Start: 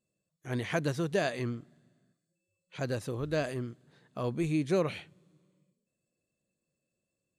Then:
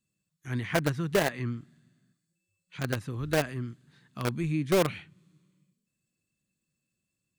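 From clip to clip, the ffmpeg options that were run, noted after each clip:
-filter_complex "[0:a]acrossover=split=330|940|2600[s0][s1][s2][s3];[s1]acrusher=bits=4:mix=0:aa=0.000001[s4];[s3]acompressor=threshold=0.00141:ratio=5[s5];[s0][s4][s2][s5]amix=inputs=4:normalize=0,volume=1.5"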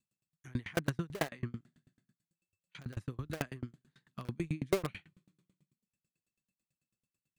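-af "asoftclip=type=hard:threshold=0.112,aeval=exprs='val(0)*pow(10,-33*if(lt(mod(9.1*n/s,1),2*abs(9.1)/1000),1-mod(9.1*n/s,1)/(2*abs(9.1)/1000),(mod(9.1*n/s,1)-2*abs(9.1)/1000)/(1-2*abs(9.1)/1000))/20)':c=same,volume=1.12"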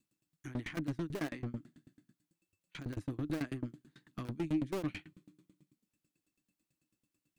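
-af "aeval=exprs='(tanh(112*val(0)+0.35)-tanh(0.35))/112':c=same,equalizer=f=300:w=3.7:g=15,volume=1.78"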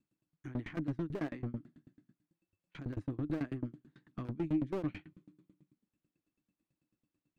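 -af "lowpass=f=1300:p=1,volume=1.12"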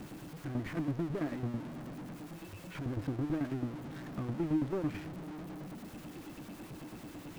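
-af "aeval=exprs='val(0)+0.5*0.0133*sgn(val(0))':c=same,highshelf=f=2600:g=-10"

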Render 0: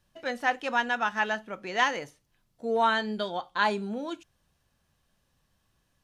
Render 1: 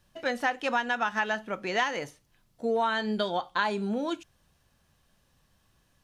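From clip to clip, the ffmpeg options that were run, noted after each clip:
-af "acompressor=threshold=0.0398:ratio=6,volume=1.68"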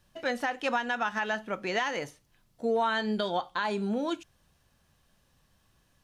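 -af "alimiter=limit=0.119:level=0:latency=1:release=49"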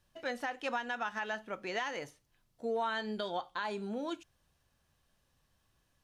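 -af "equalizer=f=190:t=o:w=0.64:g=-3.5,volume=0.473"

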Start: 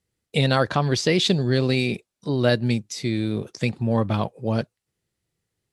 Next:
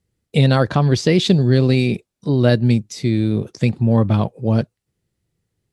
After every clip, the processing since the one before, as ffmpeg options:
-af "lowshelf=f=410:g=9"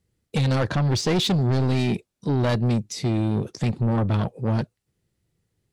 -af "asoftclip=type=tanh:threshold=0.133"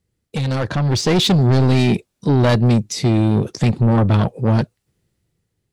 -af "dynaudnorm=f=210:g=9:m=2.37"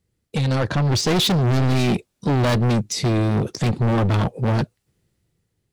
-af "volume=6.68,asoftclip=hard,volume=0.15"

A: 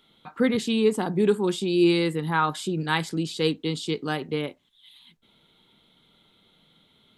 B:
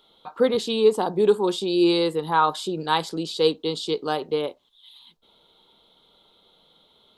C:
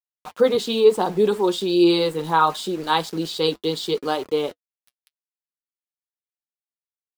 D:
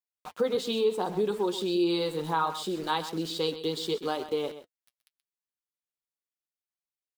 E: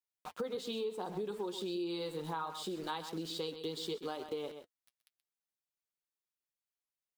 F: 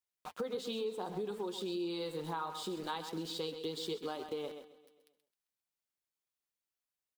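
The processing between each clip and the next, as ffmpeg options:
-af "equalizer=f=125:t=o:w=1:g=-9,equalizer=f=250:t=o:w=1:g=-5,equalizer=f=500:t=o:w=1:g=6,equalizer=f=1000:t=o:w=1:g=6,equalizer=f=2000:t=o:w=1:g=-10,equalizer=f=4000:t=o:w=1:g=6,equalizer=f=8000:t=o:w=1:g=-3,volume=1.12"
-af "aeval=exprs='val(0)*gte(abs(val(0)),0.0119)':c=same,flanger=delay=2.8:depth=5.1:regen=-51:speed=0.71:shape=triangular,volume=2"
-af "acompressor=threshold=0.0794:ratio=2,aecho=1:1:128:0.237,volume=0.562"
-af "acompressor=threshold=0.02:ratio=3,volume=0.668"
-af "aecho=1:1:132|264|396|528|660:0.141|0.0805|0.0459|0.0262|0.0149"

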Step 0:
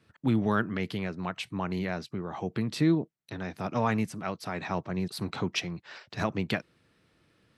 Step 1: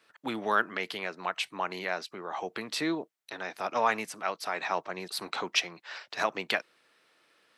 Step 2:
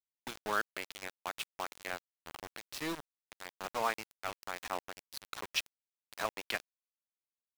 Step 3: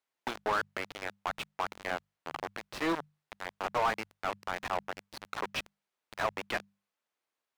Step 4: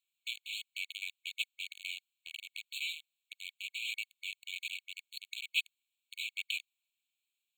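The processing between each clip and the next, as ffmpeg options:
-af "highpass=590,volume=1.68"
-af "aeval=exprs='val(0)*gte(abs(val(0)),0.0398)':c=same,volume=0.473"
-filter_complex "[0:a]bandreject=f=50:t=h:w=6,bandreject=f=100:t=h:w=6,bandreject=f=150:t=h:w=6,bandreject=f=200:t=h:w=6,asplit=2[s0][s1];[s1]highpass=f=720:p=1,volume=17.8,asoftclip=type=tanh:threshold=0.141[s2];[s0][s2]amix=inputs=2:normalize=0,lowpass=f=1100:p=1,volume=0.501"
-af "afftfilt=real='re*eq(mod(floor(b*sr/1024/2200),2),1)':imag='im*eq(mod(floor(b*sr/1024/2200),2),1)':win_size=1024:overlap=0.75,volume=1.88"

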